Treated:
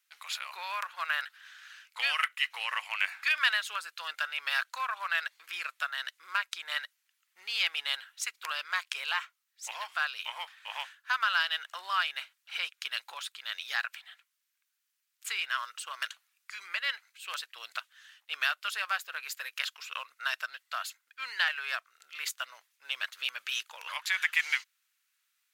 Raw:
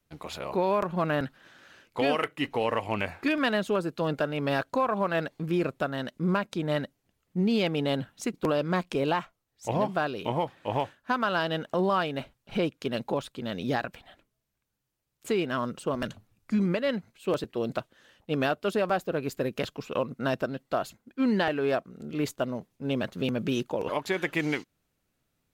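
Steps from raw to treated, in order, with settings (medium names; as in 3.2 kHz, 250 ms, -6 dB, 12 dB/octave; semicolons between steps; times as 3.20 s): high-pass 1.4 kHz 24 dB/octave; trim +5 dB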